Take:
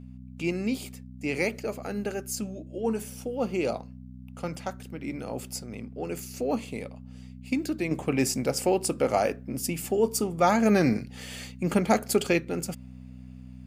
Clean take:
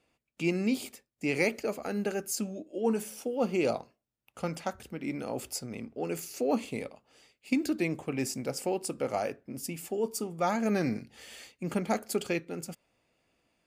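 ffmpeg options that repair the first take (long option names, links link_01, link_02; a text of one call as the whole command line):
ffmpeg -i in.wav -af "bandreject=frequency=63:width_type=h:width=4,bandreject=frequency=126:width_type=h:width=4,bandreject=frequency=189:width_type=h:width=4,bandreject=frequency=252:width_type=h:width=4,asetnsamples=nb_out_samples=441:pad=0,asendcmd='7.91 volume volume -7dB',volume=0dB" out.wav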